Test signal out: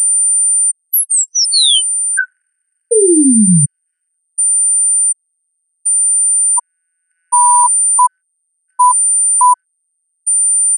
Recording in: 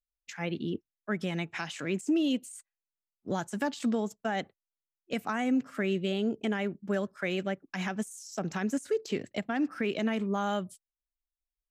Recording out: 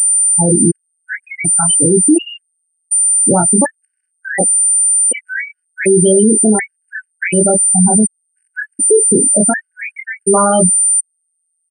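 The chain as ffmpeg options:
-af "afftfilt=real='re*gte(hypot(re,im),0.0708)':imag='im*gte(hypot(re,im),0.0708)':win_size=1024:overlap=0.75,aecho=1:1:23|33:0.668|0.141,aeval=exprs='val(0)+0.02*sin(2*PI*9100*n/s)':c=same,alimiter=level_in=21.1:limit=0.891:release=50:level=0:latency=1,afftfilt=real='re*gt(sin(2*PI*0.68*pts/sr)*(1-2*mod(floor(b*sr/1024/1500),2)),0)':imag='im*gt(sin(2*PI*0.68*pts/sr)*(1-2*mod(floor(b*sr/1024/1500),2)),0)':win_size=1024:overlap=0.75,volume=0.891"

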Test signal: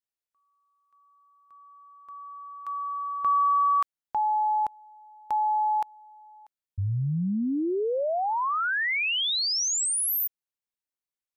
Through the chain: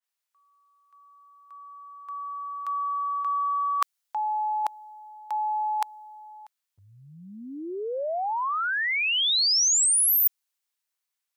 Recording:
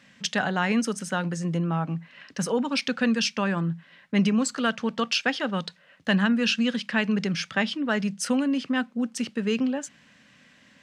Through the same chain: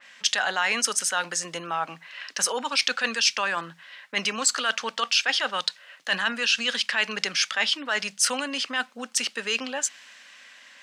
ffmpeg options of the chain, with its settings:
-af "highpass=820,areverse,acompressor=threshold=0.01:ratio=5:attack=68:release=26:knee=6:detection=peak,areverse,adynamicequalizer=threshold=0.00282:dfrequency=3100:dqfactor=0.7:tfrequency=3100:tqfactor=0.7:attack=5:release=100:ratio=0.375:range=3:mode=boostabove:tftype=highshelf,volume=2.51"

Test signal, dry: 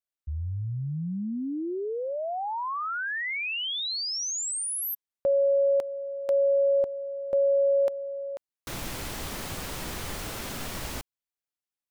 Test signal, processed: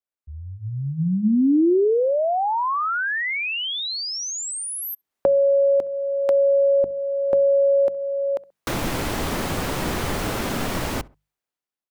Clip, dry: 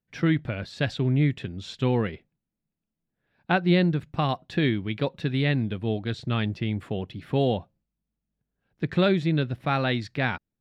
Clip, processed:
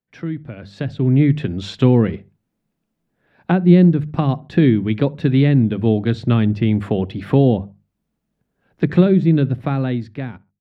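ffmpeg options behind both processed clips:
-filter_complex "[0:a]lowshelf=f=150:g=-8.5,asplit=2[s0][s1];[s1]adelay=66,lowpass=f=1400:p=1,volume=0.075,asplit=2[s2][s3];[s3]adelay=66,lowpass=f=1400:p=1,volume=0.35[s4];[s0][s2][s4]amix=inputs=3:normalize=0,acrossover=split=330[s5][s6];[s6]acompressor=threshold=0.0158:ratio=10:attack=9.5:release=983:knee=2.83:detection=peak[s7];[s5][s7]amix=inputs=2:normalize=0,highshelf=f=2300:g=-9,bandreject=f=50:t=h:w=6,bandreject=f=100:t=h:w=6,bandreject=f=150:t=h:w=6,bandreject=f=200:t=h:w=6,dynaudnorm=f=150:g=13:m=5.62,volume=1.26"

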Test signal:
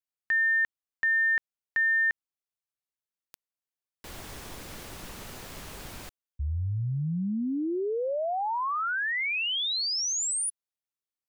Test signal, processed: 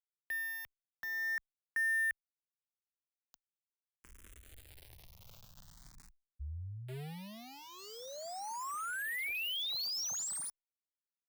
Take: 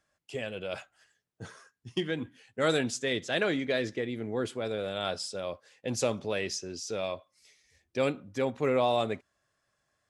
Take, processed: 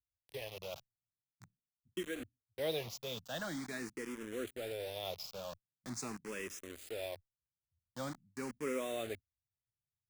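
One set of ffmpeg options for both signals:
-filter_complex "[0:a]acrossover=split=150[s0][s1];[s1]acrusher=bits=5:mix=0:aa=0.000001[s2];[s0][s2]amix=inputs=2:normalize=0,asplit=2[s3][s4];[s4]afreqshift=0.44[s5];[s3][s5]amix=inputs=2:normalize=1,volume=0.398"

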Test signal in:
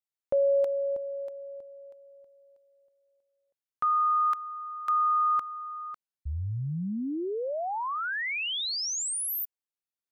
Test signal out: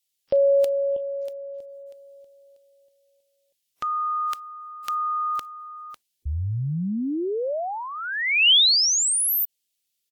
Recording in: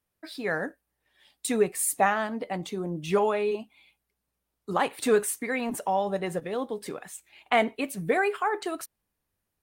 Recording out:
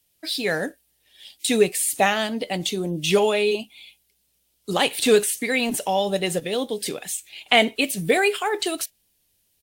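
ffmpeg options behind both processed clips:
-filter_complex "[0:a]acrossover=split=3500[s0][s1];[s1]acompressor=threshold=0.01:ratio=4:attack=1:release=60[s2];[s0][s2]amix=inputs=2:normalize=0,firequalizer=gain_entry='entry(580,0);entry(1100,-8);entry(3000,12)':delay=0.05:min_phase=1,volume=1.88" -ar 44100 -c:a wmav2 -b:a 128k

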